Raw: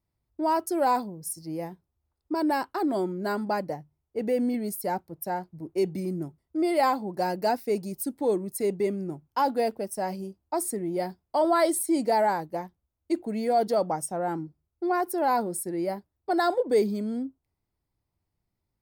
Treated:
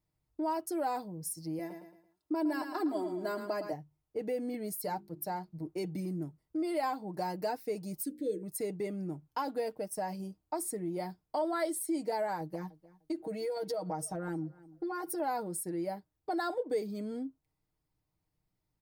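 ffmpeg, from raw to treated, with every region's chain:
-filter_complex "[0:a]asettb=1/sr,asplit=3[a][b][c];[a]atrim=end=1.594[d];[b]atrim=start=1.59:end=3.73,asetpts=PTS-STARTPTS,afade=t=in:d=0.004:c=qsin,afade=t=out:st=2.136:d=0.004:c=qsin,highpass=130,aecho=1:1:3:0.63,atrim=end_sample=94374,aecho=1:1:111|222|333|444:0.316|0.117|0.0433|0.016,atrim=end_sample=94374[e];[c]atrim=start=3.726[f];[d][e]acrossfade=d=0.004:c1=hsin:c2=qsin[g];[g][f]acrossfade=d=0.004:c1=qsin:c2=hsin,asettb=1/sr,asplit=3[h][i][j];[h]atrim=end=4.794[k];[i]atrim=start=4.79:end=5.63,asetpts=PTS-STARTPTS,afade=t=in:d=0.004:c=qsin,afade=t=out:st=0.836:d=0.004:c=qsin,equalizer=f=4.4k:w=3.7:g=6.5,bandreject=f=50:t=h:w=6,bandreject=f=100:t=h:w=6,bandreject=f=150:t=h:w=6,bandreject=f=200:t=h:w=6,bandreject=f=250:t=h:w=6,bandreject=f=300:t=h:w=6,bandreject=f=350:t=h:w=6,bandreject=f=400:t=h:w=6[l];[j]atrim=start=5.626[m];[k][l]acrossfade=d=0.004:c1=hsin:c2=qsin[n];[n][m]acrossfade=d=0.004:c1=qsin:c2=hsin,asettb=1/sr,asplit=3[o][p][q];[o]atrim=end=8.004[r];[p]atrim=start=8:end=8.43,asetpts=PTS-STARTPTS,afade=t=in:d=0.004:c=qsin,afade=t=out:st=0.426:d=0.004:c=qsin,asuperstop=centerf=920:order=12:qfactor=0.92,bandreject=f=60:t=h:w=6,bandreject=f=120:t=h:w=6,bandreject=f=180:t=h:w=6,bandreject=f=240:t=h:w=6,bandreject=f=300:t=h:w=6,bandreject=f=360:t=h:w=6,bandreject=f=420:t=h:w=6,bandreject=f=480:t=h:w=6,bandreject=f=540:t=h:w=6[s];[q]atrim=start=8.426[t];[r][s]acrossfade=d=0.004:c1=hsin:c2=qsin[u];[u][t]acrossfade=d=0.004:c1=qsin:c2=hsin,asettb=1/sr,asplit=3[v][w][x];[v]atrim=end=12.404[y];[w]atrim=start=12.4:end=15.2,asetpts=PTS-STARTPTS,afade=t=in:d=0.004:c=qsin,afade=t=out:st=2.796:d=0.004:c=qsin,aecho=1:1:6.3:0.96,atrim=end_sample=123480,acompressor=threshold=-30dB:ratio=2.5:attack=3.2:release=140:knee=1:detection=peak,asplit=2[z][aa];[aa]adelay=301,lowpass=f=4.1k:p=1,volume=-24dB,asplit=2[ab][ac];[ac]adelay=301,lowpass=f=4.1k:p=1,volume=0.18[ad];[z][ab][ad]amix=inputs=3:normalize=0,atrim=end_sample=123480[ae];[x]atrim=start=15.196[af];[y][ae]acrossfade=d=0.004:c1=hsin:c2=qsin[ag];[ag][af]acrossfade=d=0.004:c1=qsin:c2=hsin,aecho=1:1:6.5:0.49,acompressor=threshold=-35dB:ratio=2,volume=-2dB"

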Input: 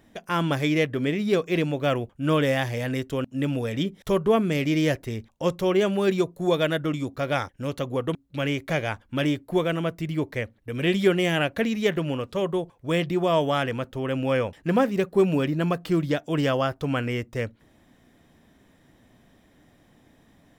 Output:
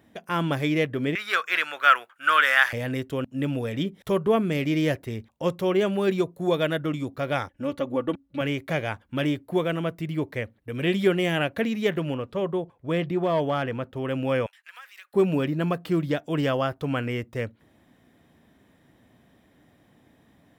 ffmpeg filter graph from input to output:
-filter_complex "[0:a]asettb=1/sr,asplit=3[a][b][c];[a]atrim=end=1.154[d];[b]atrim=start=1.15:end=2.73,asetpts=PTS-STARTPTS,afade=t=in:d=0.004:c=qsin,afade=t=out:st=1.576:d=0.004:c=qsin,acontrast=58,highpass=f=1.4k:t=q:w=4.3[e];[c]atrim=start=2.726[f];[d][e]acrossfade=d=0.004:c1=hsin:c2=qsin[g];[g][f]acrossfade=d=0.004:c1=qsin:c2=hsin,asettb=1/sr,asplit=3[h][i][j];[h]atrim=end=7.494[k];[i]atrim=start=7.49:end=8.41,asetpts=PTS-STARTPTS,afade=t=in:d=0.004:c=qsin,afade=t=out:st=0.916:d=0.004:c=qsin,highshelf=f=3.5k:g=-8,aecho=1:1:3.5:0.69,atrim=end_sample=40572[l];[j]atrim=start=8.406[m];[k][l]acrossfade=d=0.004:c1=hsin:c2=qsin[n];[n][m]acrossfade=d=0.004:c1=qsin:c2=hsin,asettb=1/sr,asplit=3[o][p][q];[o]atrim=end=12.144[r];[p]atrim=start=12.14:end=13.96,asetpts=PTS-STARTPTS,afade=t=in:d=0.004:c=qsin,afade=t=out:st=1.816:d=0.004:c=qsin,asoftclip=type=hard:threshold=-16.5dB,highshelf=f=3.8k:g=-9[s];[q]atrim=start=13.956[t];[r][s]acrossfade=d=0.004:c1=hsin:c2=qsin[u];[u][t]acrossfade=d=0.004:c1=qsin:c2=hsin,asettb=1/sr,asplit=3[v][w][x];[v]atrim=end=14.464[y];[w]atrim=start=14.46:end=15.14,asetpts=PTS-STARTPTS,afade=t=in:d=0.004:c=qsin,afade=t=out:st=0.676:d=0.004:c=qsin,highpass=f=1.4k:w=0.5412,highpass=f=1.4k:w=1.3066,acompressor=threshold=-42dB:ratio=3:attack=3.2:release=140:knee=1:detection=peak[z];[x]atrim=start=15.136[aa];[y][z]acrossfade=d=0.004:c1=hsin:c2=qsin[ab];[ab][aa]acrossfade=d=0.004:c1=qsin:c2=hsin,highpass=61,equalizer=f=6.2k:t=o:w=1:g=-5,volume=-1dB"

